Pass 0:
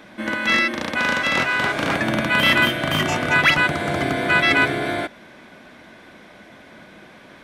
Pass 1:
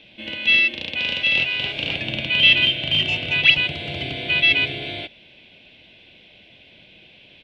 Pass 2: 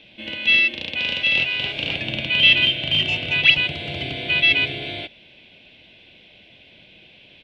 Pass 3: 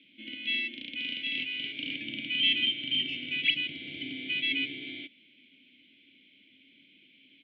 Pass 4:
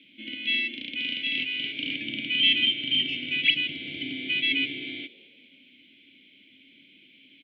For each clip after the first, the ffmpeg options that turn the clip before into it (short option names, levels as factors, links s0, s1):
-af "firequalizer=gain_entry='entry(110,0);entry(220,-10);entry(460,-6);entry(740,-10);entry(1200,-22);entry(1800,-12);entry(2700,12);entry(6200,-14);entry(10000,-20)':delay=0.05:min_phase=1,volume=0.794"
-af anull
-filter_complex "[0:a]asplit=3[s0][s1][s2];[s0]bandpass=f=270:t=q:w=8,volume=1[s3];[s1]bandpass=f=2290:t=q:w=8,volume=0.501[s4];[s2]bandpass=f=3010:t=q:w=8,volume=0.355[s5];[s3][s4][s5]amix=inputs=3:normalize=0"
-filter_complex "[0:a]asplit=4[s0][s1][s2][s3];[s1]adelay=205,afreqshift=89,volume=0.0794[s4];[s2]adelay=410,afreqshift=178,volume=0.0302[s5];[s3]adelay=615,afreqshift=267,volume=0.0115[s6];[s0][s4][s5][s6]amix=inputs=4:normalize=0,volume=1.68"